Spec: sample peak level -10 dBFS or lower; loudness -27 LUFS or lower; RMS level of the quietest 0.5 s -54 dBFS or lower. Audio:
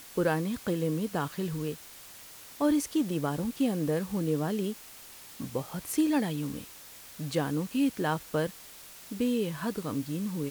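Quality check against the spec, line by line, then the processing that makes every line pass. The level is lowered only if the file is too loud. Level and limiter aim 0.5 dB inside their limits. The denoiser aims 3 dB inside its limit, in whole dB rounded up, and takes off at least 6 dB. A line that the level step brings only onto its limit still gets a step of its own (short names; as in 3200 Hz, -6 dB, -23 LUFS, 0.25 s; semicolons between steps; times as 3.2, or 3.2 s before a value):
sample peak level -13.5 dBFS: OK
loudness -31.0 LUFS: OK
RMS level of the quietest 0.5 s -49 dBFS: fail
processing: denoiser 8 dB, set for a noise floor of -49 dBFS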